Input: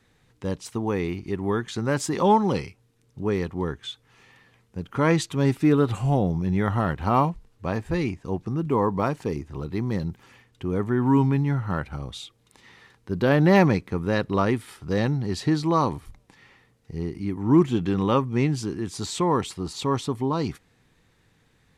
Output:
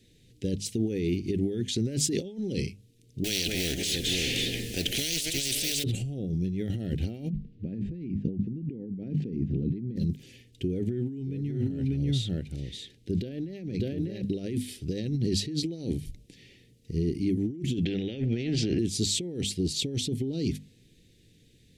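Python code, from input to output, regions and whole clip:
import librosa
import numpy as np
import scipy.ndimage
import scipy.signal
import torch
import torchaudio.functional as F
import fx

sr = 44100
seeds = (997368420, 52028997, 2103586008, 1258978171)

y = fx.chain(x, sr, fx.law_mismatch(coded='mu'),
    fx.echo_multitap(ms=(211, 539), db=(-13.5, -17.5)),
    fx.spectral_comp(ratio=10.0), at=(3.24, 5.84))
y = fx.chain(y, sr, fx.lowpass(hz=2300.0, slope=12),
    fx.peak_eq(hz=200.0, db=12.5, octaves=1.3), at=(7.3, 9.96))
y = fx.chain(y, sr, fx.high_shelf(hz=5000.0, db=-5.5),
    fx.echo_single(ms=594, db=-6.0), at=(10.67, 14.22))
y = fx.chain(y, sr, fx.lowpass(hz=1700.0, slope=12),
    fx.spectral_comp(ratio=2.0), at=(17.85, 18.79))
y = fx.hum_notches(y, sr, base_hz=50, count=5)
y = fx.over_compress(y, sr, threshold_db=-29.0, ratio=-1.0)
y = scipy.signal.sosfilt(scipy.signal.cheby1(2, 1.0, [370.0, 3100.0], 'bandstop', fs=sr, output='sos'), y)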